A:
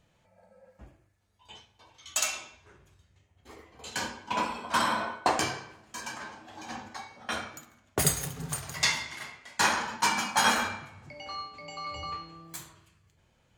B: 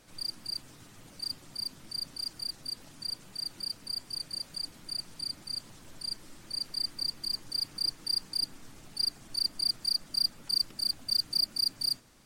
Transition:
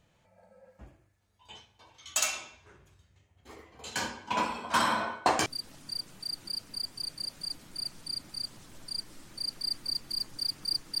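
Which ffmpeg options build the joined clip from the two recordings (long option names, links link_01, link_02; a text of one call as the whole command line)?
ffmpeg -i cue0.wav -i cue1.wav -filter_complex "[0:a]apad=whole_dur=11,atrim=end=11,atrim=end=5.462[link_01];[1:a]atrim=start=2.588:end=8.13[link_02];[link_01][link_02]acrossfade=duration=0.004:curve1=hsin:curve2=hsin" out.wav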